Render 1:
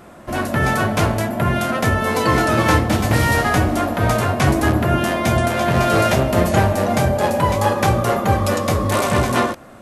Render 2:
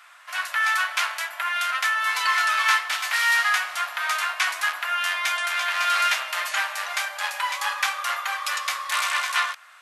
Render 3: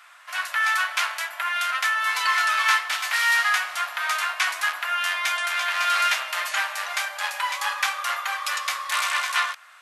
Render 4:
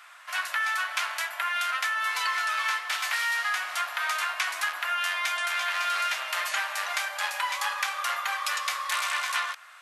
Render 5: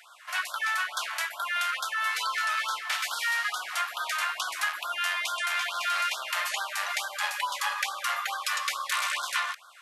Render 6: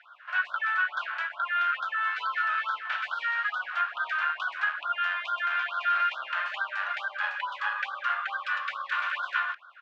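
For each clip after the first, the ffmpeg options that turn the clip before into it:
-af "highpass=f=1.1k:w=0.5412,highpass=f=1.1k:w=1.3066,equalizer=f=2.7k:t=o:w=2.8:g=9,volume=-6.5dB"
-af anull
-filter_complex "[0:a]acrossover=split=450[a][b];[b]acompressor=threshold=-25dB:ratio=6[c];[a][c]amix=inputs=2:normalize=0"
-af "afftfilt=real='re*(1-between(b*sr/1024,320*pow(2300/320,0.5+0.5*sin(2*PI*2.3*pts/sr))/1.41,320*pow(2300/320,0.5+0.5*sin(2*PI*2.3*pts/sr))*1.41))':imag='im*(1-between(b*sr/1024,320*pow(2300/320,0.5+0.5*sin(2*PI*2.3*pts/sr))/1.41,320*pow(2300/320,0.5+0.5*sin(2*PI*2.3*pts/sr))*1.41))':win_size=1024:overlap=0.75"
-filter_complex "[0:a]highpass=f=220:w=0.5412,highpass=f=220:w=1.3066,equalizer=f=570:t=q:w=4:g=4,equalizer=f=1.5k:t=q:w=4:g=9,equalizer=f=2.1k:t=q:w=4:g=-8,lowpass=f=2.4k:w=0.5412,lowpass=f=2.4k:w=1.3066,acrossover=split=510[a][b];[a]adelay=30[c];[c][b]amix=inputs=2:normalize=0,crystalizer=i=5:c=0,volume=-5dB"

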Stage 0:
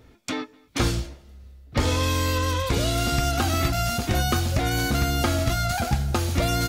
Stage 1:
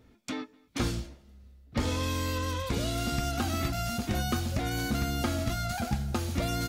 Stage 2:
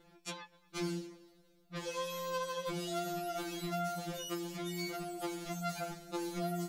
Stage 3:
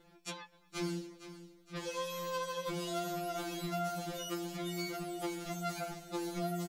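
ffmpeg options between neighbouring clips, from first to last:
-af "equalizer=f=220:t=o:w=0.53:g=7,volume=-8dB"
-af "acompressor=threshold=-39dB:ratio=3,afftfilt=real='re*2.83*eq(mod(b,8),0)':imag='im*2.83*eq(mod(b,8),0)':win_size=2048:overlap=0.75,volume=3.5dB"
-af "aecho=1:1:467|934|1401|1868|2335:0.211|0.114|0.0616|0.0333|0.018"

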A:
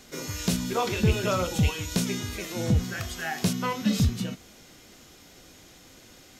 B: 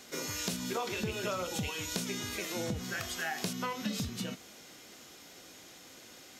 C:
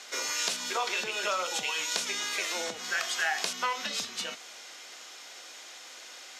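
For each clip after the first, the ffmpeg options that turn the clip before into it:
-af "highpass=f=300:p=1,acompressor=threshold=-32dB:ratio=5"
-af "highpass=740,lowpass=7.9k,volume=8dB"

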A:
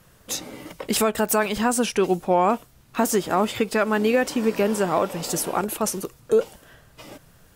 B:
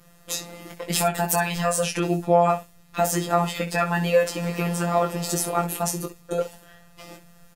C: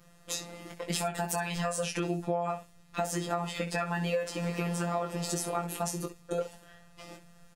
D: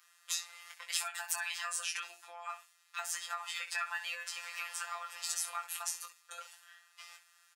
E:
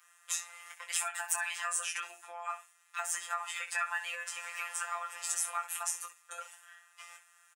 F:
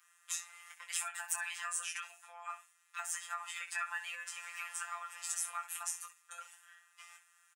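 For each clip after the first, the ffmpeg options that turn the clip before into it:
-filter_complex "[0:a]afftfilt=real='hypot(re,im)*cos(PI*b)':imag='0':win_size=1024:overlap=0.75,asplit=2[a][b];[b]aecho=0:1:19|65:0.562|0.224[c];[a][c]amix=inputs=2:normalize=0,volume=2dB"
-af "equalizer=f=14k:w=2.1:g=-14.5,acompressor=threshold=-22dB:ratio=10,volume=-4.5dB"
-af "highpass=f=1.2k:w=0.5412,highpass=f=1.2k:w=1.3066"
-af "aecho=1:1:5.7:0.79"
-af "highpass=910,volume=-4dB"

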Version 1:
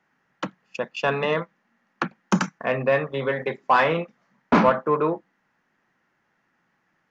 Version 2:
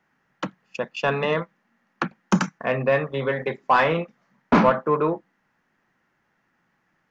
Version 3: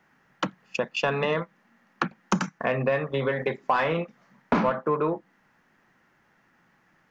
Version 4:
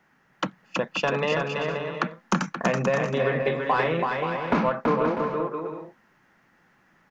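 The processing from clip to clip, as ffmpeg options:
-af "lowshelf=f=110:g=6"
-af "acompressor=threshold=-30dB:ratio=3,volume=5.5dB"
-af "aecho=1:1:330|528|646.8|718.1|760.8:0.631|0.398|0.251|0.158|0.1"

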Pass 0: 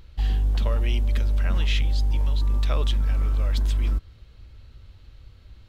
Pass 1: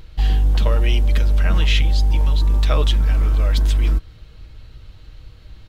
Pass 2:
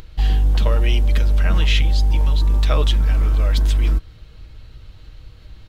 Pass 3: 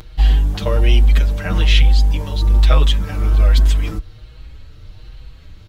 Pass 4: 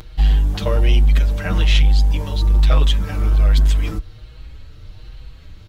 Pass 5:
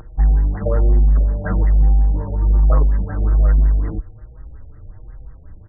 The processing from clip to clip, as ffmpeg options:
-af "aecho=1:1:6.4:0.39,volume=7dB"
-af "acompressor=mode=upward:threshold=-37dB:ratio=2.5"
-filter_complex "[0:a]asplit=2[a][b];[b]adelay=6.1,afreqshift=1.2[c];[a][c]amix=inputs=2:normalize=1,volume=5.5dB"
-af "asoftclip=type=tanh:threshold=-6dB"
-af "afftfilt=real='re*lt(b*sr/1024,790*pow(2100/790,0.5+0.5*sin(2*PI*5.5*pts/sr)))':imag='im*lt(b*sr/1024,790*pow(2100/790,0.5+0.5*sin(2*PI*5.5*pts/sr)))':win_size=1024:overlap=0.75"

